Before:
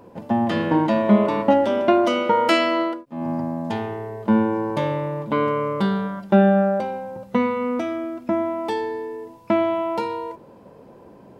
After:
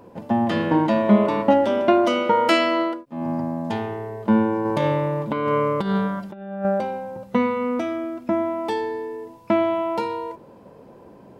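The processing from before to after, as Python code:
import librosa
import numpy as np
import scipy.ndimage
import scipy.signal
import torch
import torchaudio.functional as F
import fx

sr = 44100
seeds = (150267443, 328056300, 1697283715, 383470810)

y = fx.over_compress(x, sr, threshold_db=-22.0, ratio=-0.5, at=(4.65, 6.65))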